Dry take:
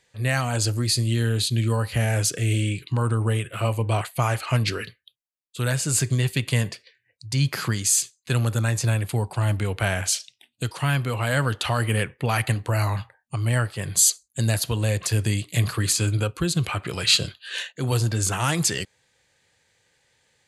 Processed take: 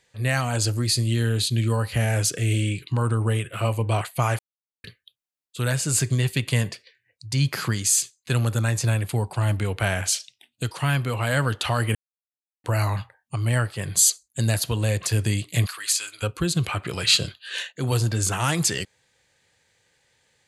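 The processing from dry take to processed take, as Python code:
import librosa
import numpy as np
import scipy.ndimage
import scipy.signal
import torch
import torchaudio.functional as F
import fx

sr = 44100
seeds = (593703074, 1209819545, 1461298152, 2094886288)

y = fx.highpass(x, sr, hz=1400.0, slope=12, at=(15.65, 16.22), fade=0.02)
y = fx.edit(y, sr, fx.silence(start_s=4.39, length_s=0.45),
    fx.silence(start_s=11.95, length_s=0.69), tone=tone)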